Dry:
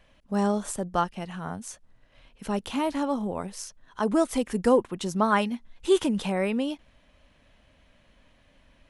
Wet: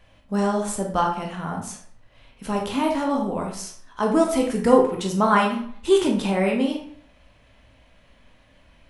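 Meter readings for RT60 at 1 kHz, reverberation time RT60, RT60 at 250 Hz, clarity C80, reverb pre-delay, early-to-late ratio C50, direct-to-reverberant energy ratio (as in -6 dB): 0.60 s, 0.60 s, 0.60 s, 9.5 dB, 15 ms, 5.5 dB, 0.0 dB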